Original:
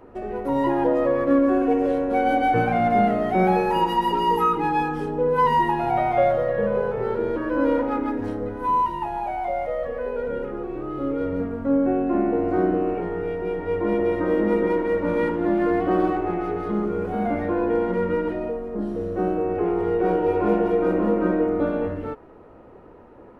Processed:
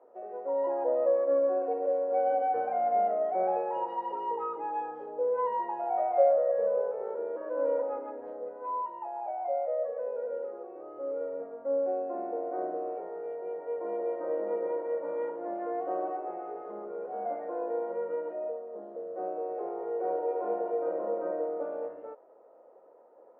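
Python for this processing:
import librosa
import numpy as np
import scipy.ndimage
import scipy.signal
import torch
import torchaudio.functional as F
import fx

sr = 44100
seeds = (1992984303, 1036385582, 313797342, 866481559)

y = fx.ladder_bandpass(x, sr, hz=630.0, resonance_pct=70)
y = fx.notch(y, sr, hz=590.0, q=14.0)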